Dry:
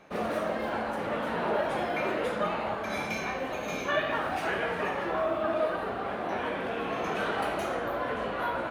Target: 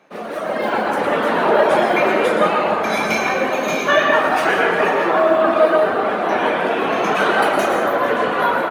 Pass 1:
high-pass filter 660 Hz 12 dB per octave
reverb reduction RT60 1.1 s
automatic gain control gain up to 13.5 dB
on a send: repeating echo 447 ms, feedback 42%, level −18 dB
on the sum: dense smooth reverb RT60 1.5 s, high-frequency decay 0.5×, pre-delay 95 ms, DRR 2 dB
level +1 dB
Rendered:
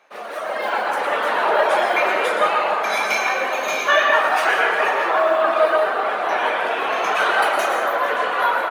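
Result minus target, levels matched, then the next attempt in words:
250 Hz band −11.0 dB
high-pass filter 190 Hz 12 dB per octave
reverb reduction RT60 1.1 s
automatic gain control gain up to 13.5 dB
on a send: repeating echo 447 ms, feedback 42%, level −18 dB
on the sum: dense smooth reverb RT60 1.5 s, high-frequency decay 0.5×, pre-delay 95 ms, DRR 2 dB
level +1 dB

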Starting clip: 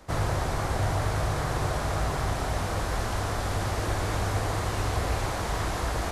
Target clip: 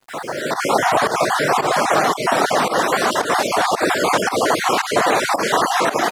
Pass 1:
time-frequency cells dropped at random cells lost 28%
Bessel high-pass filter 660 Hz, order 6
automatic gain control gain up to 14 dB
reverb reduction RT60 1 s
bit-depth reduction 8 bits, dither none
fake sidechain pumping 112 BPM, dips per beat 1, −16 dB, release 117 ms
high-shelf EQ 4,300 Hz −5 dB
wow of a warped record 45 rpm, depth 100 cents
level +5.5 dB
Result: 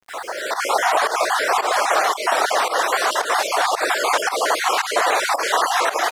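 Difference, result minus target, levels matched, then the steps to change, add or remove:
250 Hz band −11.5 dB
change: Bessel high-pass filter 300 Hz, order 6

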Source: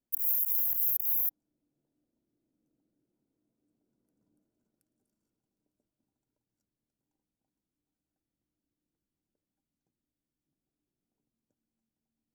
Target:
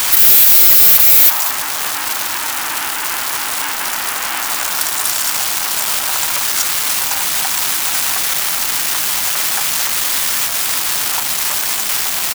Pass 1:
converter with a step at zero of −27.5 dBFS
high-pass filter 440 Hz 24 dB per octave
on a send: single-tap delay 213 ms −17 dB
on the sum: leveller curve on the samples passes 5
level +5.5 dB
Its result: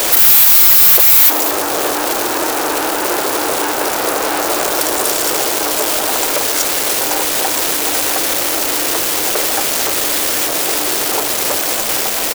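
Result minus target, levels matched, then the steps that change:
500 Hz band +14.0 dB
change: high-pass filter 910 Hz 24 dB per octave

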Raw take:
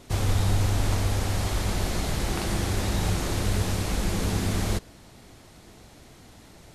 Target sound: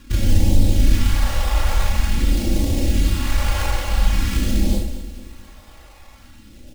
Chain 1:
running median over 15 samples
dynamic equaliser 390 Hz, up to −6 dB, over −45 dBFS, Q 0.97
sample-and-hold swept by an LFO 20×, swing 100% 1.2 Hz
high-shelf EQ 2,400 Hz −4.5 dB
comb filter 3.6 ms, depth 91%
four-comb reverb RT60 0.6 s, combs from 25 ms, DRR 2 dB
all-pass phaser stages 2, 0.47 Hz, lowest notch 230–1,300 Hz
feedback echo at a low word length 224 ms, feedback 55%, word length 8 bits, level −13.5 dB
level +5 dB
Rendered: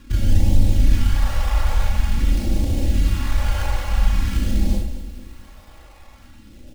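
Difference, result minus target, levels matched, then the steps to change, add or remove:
4,000 Hz band −4.0 dB; 500 Hz band −3.0 dB
remove: dynamic equaliser 390 Hz, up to −6 dB, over −45 dBFS, Q 0.97
remove: high-shelf EQ 2,400 Hz −4.5 dB

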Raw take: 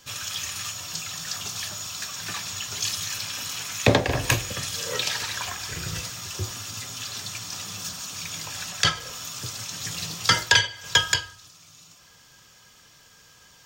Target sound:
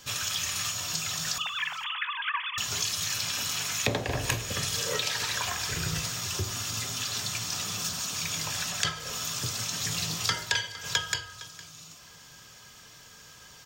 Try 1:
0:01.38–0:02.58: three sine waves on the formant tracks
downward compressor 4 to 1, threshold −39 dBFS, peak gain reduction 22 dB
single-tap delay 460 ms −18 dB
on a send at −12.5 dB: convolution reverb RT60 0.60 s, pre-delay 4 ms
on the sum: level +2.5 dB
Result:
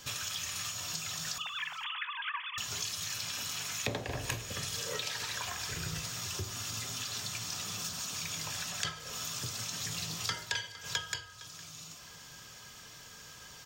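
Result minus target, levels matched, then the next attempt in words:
downward compressor: peak gain reduction +7 dB
0:01.38–0:02.58: three sine waves on the formant tracks
downward compressor 4 to 1, threshold −29.5 dBFS, peak gain reduction 14.5 dB
single-tap delay 460 ms −18 dB
on a send at −12.5 dB: convolution reverb RT60 0.60 s, pre-delay 4 ms
on the sum: level +2.5 dB

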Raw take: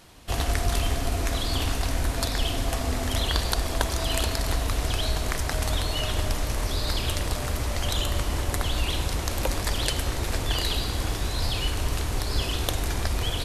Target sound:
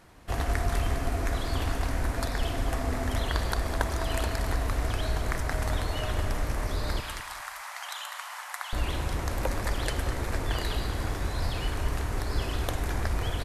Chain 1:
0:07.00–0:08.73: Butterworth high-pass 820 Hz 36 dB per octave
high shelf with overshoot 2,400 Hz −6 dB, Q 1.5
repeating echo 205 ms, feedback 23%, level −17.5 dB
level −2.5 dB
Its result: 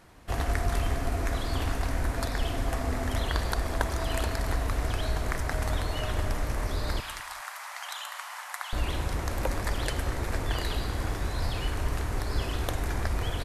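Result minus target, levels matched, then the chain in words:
echo-to-direct −6.5 dB
0:07.00–0:08.73: Butterworth high-pass 820 Hz 36 dB per octave
high shelf with overshoot 2,400 Hz −6 dB, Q 1.5
repeating echo 205 ms, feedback 23%, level −11 dB
level −2.5 dB

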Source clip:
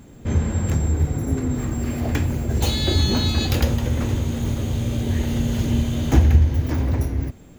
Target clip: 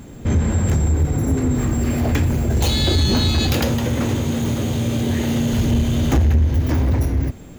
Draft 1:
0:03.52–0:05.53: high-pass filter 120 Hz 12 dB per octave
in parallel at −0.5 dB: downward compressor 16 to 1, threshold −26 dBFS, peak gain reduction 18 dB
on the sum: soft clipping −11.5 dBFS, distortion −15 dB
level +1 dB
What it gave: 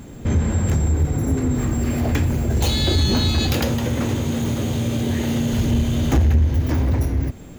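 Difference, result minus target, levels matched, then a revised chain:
downward compressor: peak gain reduction +6.5 dB
0:03.52–0:05.53: high-pass filter 120 Hz 12 dB per octave
in parallel at −0.5 dB: downward compressor 16 to 1, threshold −19 dBFS, peak gain reduction 11.5 dB
on the sum: soft clipping −11.5 dBFS, distortion −14 dB
level +1 dB

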